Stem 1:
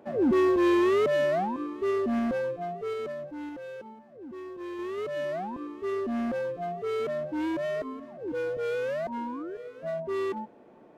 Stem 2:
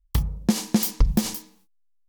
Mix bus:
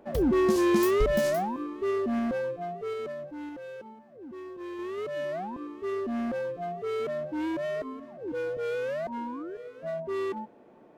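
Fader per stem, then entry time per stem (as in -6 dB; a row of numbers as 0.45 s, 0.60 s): -1.0 dB, -10.5 dB; 0.00 s, 0.00 s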